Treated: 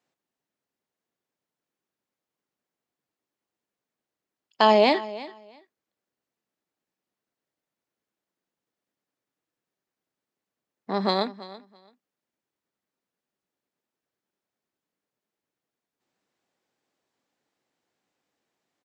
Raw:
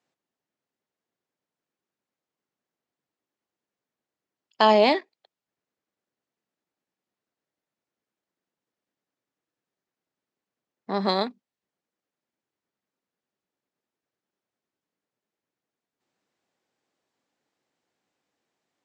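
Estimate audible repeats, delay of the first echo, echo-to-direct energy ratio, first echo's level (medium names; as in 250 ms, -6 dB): 2, 333 ms, -17.5 dB, -17.5 dB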